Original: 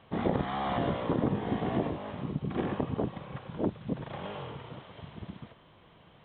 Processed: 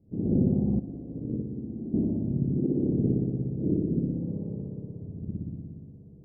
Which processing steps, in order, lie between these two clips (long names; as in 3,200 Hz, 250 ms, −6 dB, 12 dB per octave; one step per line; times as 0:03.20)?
spring reverb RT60 2 s, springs 59 ms, chirp 80 ms, DRR −8 dB
0:00.79–0:01.94: noise gate −17 dBFS, range −13 dB
inverse Chebyshev low-pass filter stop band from 1,600 Hz, stop band 70 dB